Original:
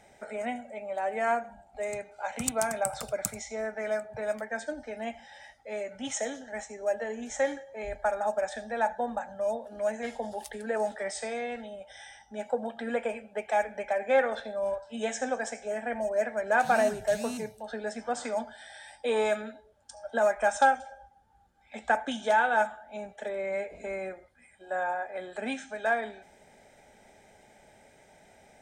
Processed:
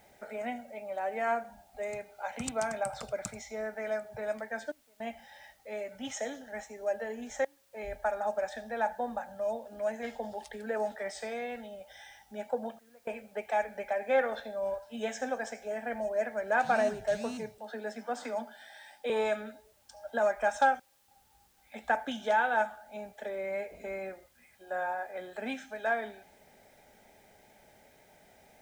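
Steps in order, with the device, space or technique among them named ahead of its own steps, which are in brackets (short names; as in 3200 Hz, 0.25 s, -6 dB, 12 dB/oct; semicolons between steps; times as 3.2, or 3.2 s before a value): 17.58–19.1 Chebyshev high-pass 180 Hz, order 10; worn cassette (LPF 6200 Hz 12 dB/oct; wow and flutter 18 cents; level dips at 4.72/7.45/12.79/20.8, 0.279 s -26 dB; white noise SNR 34 dB); gain -3 dB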